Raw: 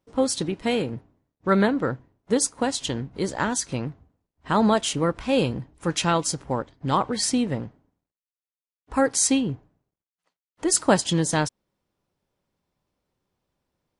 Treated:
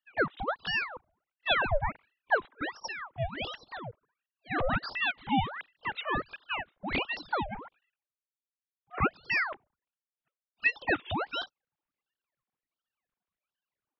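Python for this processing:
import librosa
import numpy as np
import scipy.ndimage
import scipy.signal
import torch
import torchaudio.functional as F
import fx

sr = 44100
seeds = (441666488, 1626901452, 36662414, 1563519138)

y = fx.sine_speech(x, sr)
y = fx.ring_lfo(y, sr, carrier_hz=1300.0, swing_pct=80, hz=1.4)
y = y * librosa.db_to_amplitude(-5.5)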